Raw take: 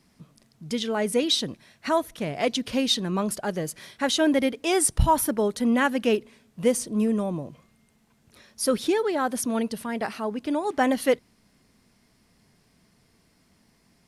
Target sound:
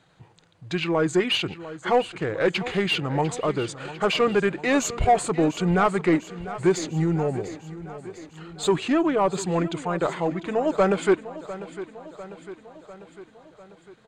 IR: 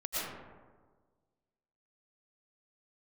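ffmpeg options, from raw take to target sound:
-filter_complex "[0:a]bandreject=f=7.3k:w=8,asplit=2[a][b];[b]highpass=f=720:p=1,volume=15dB,asoftclip=type=tanh:threshold=-8dB[c];[a][c]amix=inputs=2:normalize=0,lowpass=f=2k:p=1,volume=-6dB,equalizer=f=300:t=o:w=0.22:g=-11.5,asetrate=33038,aresample=44100,atempo=1.33484,aecho=1:1:699|1398|2097|2796|3495|4194:0.178|0.105|0.0619|0.0365|0.0215|0.0127"

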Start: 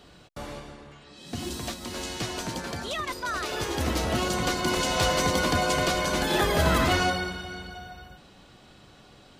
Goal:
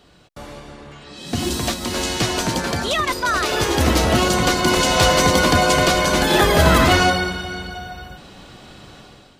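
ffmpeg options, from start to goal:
-af "dynaudnorm=f=560:g=3:m=11.5dB"

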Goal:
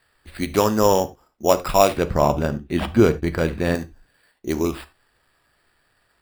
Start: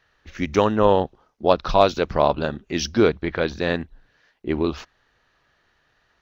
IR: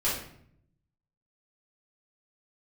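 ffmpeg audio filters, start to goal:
-filter_complex "[0:a]acrusher=samples=7:mix=1:aa=0.000001,asettb=1/sr,asplit=3[a][b][c];[a]atrim=end=1.974[d];[b]atrim=start=1.97:end=3.75,asetpts=PTS-STARTPTS,afade=t=in:d=0.004:c=qsin,afade=t=out:st=1.776:d=0.004:c=qsin,bass=f=250:g=7,treble=f=4k:g=-10[e];[c]atrim=start=3.746[f];[d][e]acrossfade=d=0.004:c1=hsin:c2=qsin[g];[g][f]acrossfade=d=0.004:c1=qsin:c2=hsin,asplit=2[h][i];[1:a]atrim=start_sample=2205,atrim=end_sample=4410[j];[i][j]afir=irnorm=-1:irlink=0,volume=-19dB[k];[h][k]amix=inputs=2:normalize=0,volume=-1dB"

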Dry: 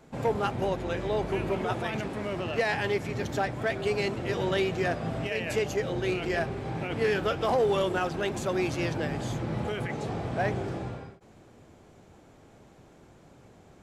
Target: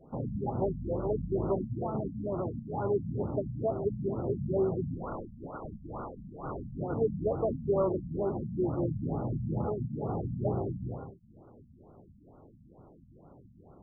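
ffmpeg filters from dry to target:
-filter_complex "[0:a]asettb=1/sr,asplit=3[a][b][c];[a]atrim=end=4.984[d];[b]atrim=start=4.98:end=6.79,asetpts=PTS-STARTPTS,afade=t=in:d=0.004:c=qsin,afade=t=out:st=1.806:d=0.004:c=qsin,aeval=exprs='(mod(31.6*val(0)+1,2)-1)/31.6':c=same[e];[c]atrim=start=6.786[f];[d][e]acrossfade=d=0.004:c1=hsin:c2=qsin[g];[g][f]acrossfade=d=0.004:c1=qsin:c2=hsin,afftfilt=real='re*lt(b*sr/1024,240*pow(1500/240,0.5+0.5*sin(2*PI*2.2*pts/sr)))':imag='im*lt(b*sr/1024,240*pow(1500/240,0.5+0.5*sin(2*PI*2.2*pts/sr)))':win_size=1024:overlap=0.75"

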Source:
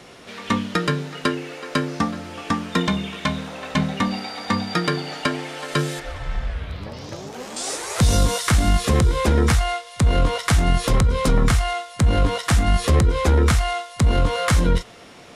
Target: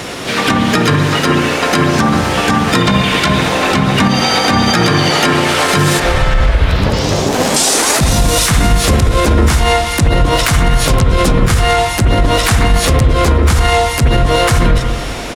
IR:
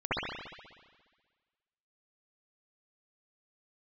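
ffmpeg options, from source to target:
-filter_complex "[0:a]highshelf=f=6.6k:g=5,asplit=4[a][b][c][d];[b]asetrate=29433,aresample=44100,atempo=1.49831,volume=-6dB[e];[c]asetrate=55563,aresample=44100,atempo=0.793701,volume=-16dB[f];[d]asetrate=58866,aresample=44100,atempo=0.749154,volume=-12dB[g];[a][e][f][g]amix=inputs=4:normalize=0,acompressor=threshold=-23dB:ratio=6,asplit=2[h][i];[1:a]atrim=start_sample=2205[j];[i][j]afir=irnorm=-1:irlink=0,volume=-17.5dB[k];[h][k]amix=inputs=2:normalize=0,alimiter=level_in=19dB:limit=-1dB:release=50:level=0:latency=1,volume=-1dB"

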